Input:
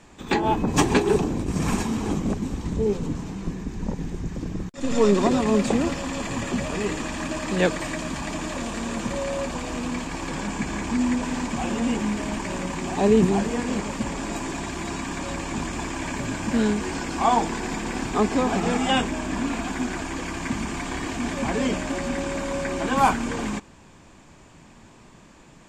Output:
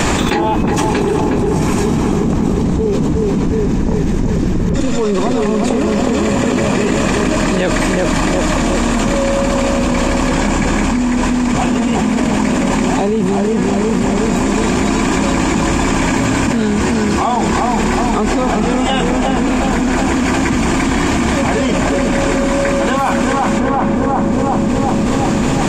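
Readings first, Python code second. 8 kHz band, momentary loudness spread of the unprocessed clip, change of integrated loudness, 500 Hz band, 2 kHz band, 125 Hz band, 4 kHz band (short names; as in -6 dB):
+10.5 dB, 10 LU, +10.5 dB, +10.0 dB, +10.5 dB, +12.0 dB, +9.5 dB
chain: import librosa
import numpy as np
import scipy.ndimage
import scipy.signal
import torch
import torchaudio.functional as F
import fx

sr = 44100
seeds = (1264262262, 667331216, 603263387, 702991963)

p1 = fx.vibrato(x, sr, rate_hz=1.6, depth_cents=10.0)
p2 = p1 + fx.echo_filtered(p1, sr, ms=365, feedback_pct=66, hz=1200.0, wet_db=-3.5, dry=0)
y = fx.env_flatten(p2, sr, amount_pct=100)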